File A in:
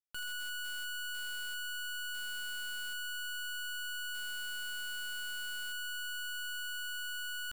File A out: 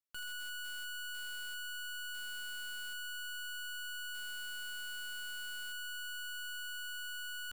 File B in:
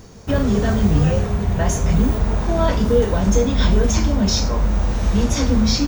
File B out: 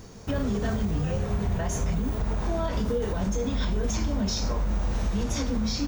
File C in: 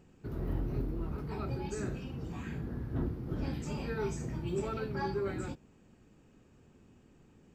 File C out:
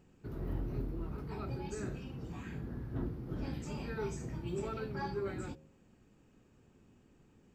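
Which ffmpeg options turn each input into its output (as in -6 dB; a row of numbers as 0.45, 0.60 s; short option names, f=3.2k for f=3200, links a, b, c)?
-af "bandreject=f=76.9:t=h:w=4,bandreject=f=153.8:t=h:w=4,bandreject=f=230.7:t=h:w=4,bandreject=f=307.6:t=h:w=4,bandreject=f=384.5:t=h:w=4,bandreject=f=461.4:t=h:w=4,bandreject=f=538.3:t=h:w=4,bandreject=f=615.2:t=h:w=4,bandreject=f=692.1:t=h:w=4,bandreject=f=769:t=h:w=4,alimiter=limit=-15.5dB:level=0:latency=1:release=169,volume=-3dB"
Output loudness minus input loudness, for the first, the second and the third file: -3.0, -10.0, -3.5 LU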